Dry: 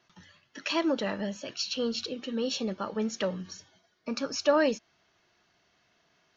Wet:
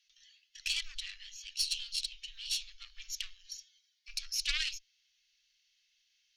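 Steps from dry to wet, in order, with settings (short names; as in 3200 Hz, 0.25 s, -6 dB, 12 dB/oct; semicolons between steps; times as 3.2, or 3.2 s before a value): added harmonics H 3 -16 dB, 4 -10 dB, 6 -12 dB, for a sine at -12 dBFS; inverse Chebyshev band-stop 120–700 Hz, stop band 70 dB; gain +5.5 dB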